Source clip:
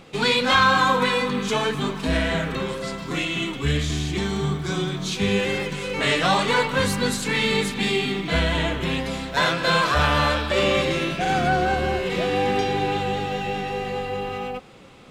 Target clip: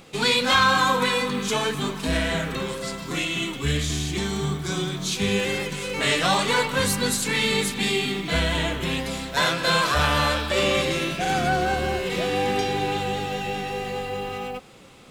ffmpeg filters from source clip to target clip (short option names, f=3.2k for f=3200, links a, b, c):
-af "highshelf=f=6.3k:g=11.5,volume=-2dB"